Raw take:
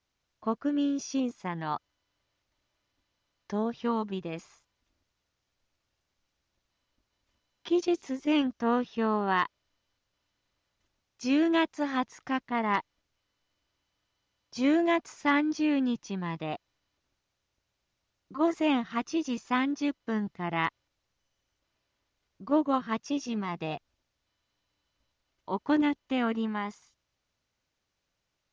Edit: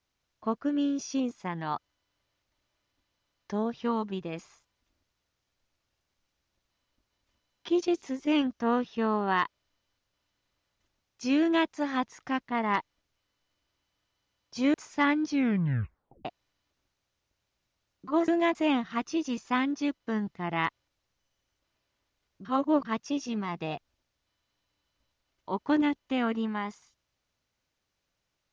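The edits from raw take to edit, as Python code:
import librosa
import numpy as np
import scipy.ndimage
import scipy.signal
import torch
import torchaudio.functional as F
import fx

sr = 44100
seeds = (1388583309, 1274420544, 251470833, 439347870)

y = fx.edit(x, sr, fx.move(start_s=14.74, length_s=0.27, to_s=18.55),
    fx.tape_stop(start_s=15.56, length_s=0.96),
    fx.reverse_span(start_s=22.45, length_s=0.4), tone=tone)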